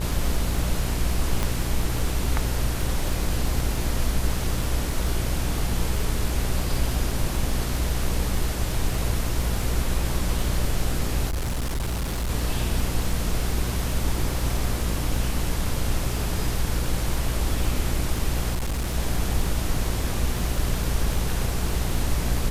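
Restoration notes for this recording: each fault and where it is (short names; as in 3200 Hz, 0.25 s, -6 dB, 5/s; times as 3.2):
buzz 60 Hz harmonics 27 -28 dBFS
crackle 14/s -26 dBFS
1.43 pop -10 dBFS
11.28–12.3 clipped -23 dBFS
18.54–18.95 clipped -22.5 dBFS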